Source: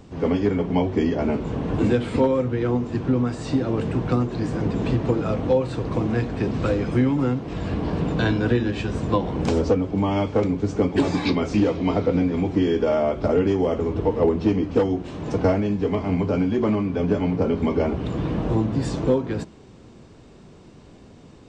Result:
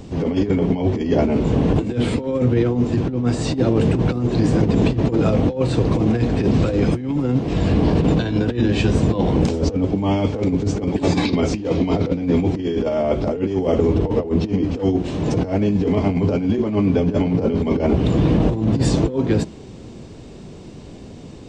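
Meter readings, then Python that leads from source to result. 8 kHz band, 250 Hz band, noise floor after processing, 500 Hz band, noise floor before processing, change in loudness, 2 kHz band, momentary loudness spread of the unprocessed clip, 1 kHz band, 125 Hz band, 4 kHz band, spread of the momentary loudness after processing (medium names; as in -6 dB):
no reading, +4.0 dB, -38 dBFS, +1.5 dB, -47 dBFS, +3.5 dB, +1.0 dB, 5 LU, +0.5 dB, +5.5 dB, +4.5 dB, 4 LU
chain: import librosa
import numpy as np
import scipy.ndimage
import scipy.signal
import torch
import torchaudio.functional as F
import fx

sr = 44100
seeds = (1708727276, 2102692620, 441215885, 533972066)

y = fx.peak_eq(x, sr, hz=1300.0, db=-6.5, octaves=1.3)
y = fx.over_compress(y, sr, threshold_db=-24.0, ratio=-0.5)
y = y * 10.0 ** (7.0 / 20.0)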